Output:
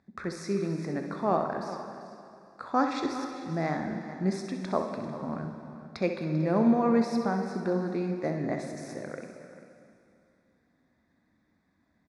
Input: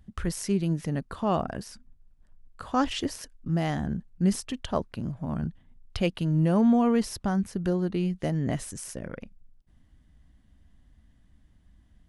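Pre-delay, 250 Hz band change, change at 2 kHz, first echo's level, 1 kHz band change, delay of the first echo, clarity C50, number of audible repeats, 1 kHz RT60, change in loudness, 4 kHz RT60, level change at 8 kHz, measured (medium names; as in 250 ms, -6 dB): 6 ms, -2.5 dB, +0.5 dB, -9.0 dB, +1.5 dB, 65 ms, 4.0 dB, 3, 2.6 s, -2.0 dB, 2.4 s, no reading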